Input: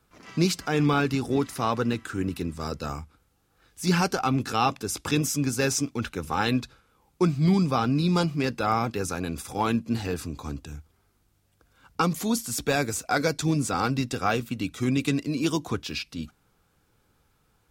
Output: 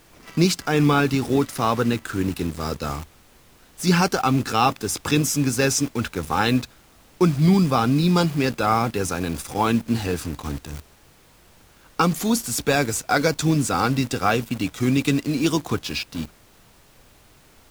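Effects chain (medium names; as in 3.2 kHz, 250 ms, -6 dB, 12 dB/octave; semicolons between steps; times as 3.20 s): added noise pink -53 dBFS; in parallel at -3 dB: bit crusher 6-bit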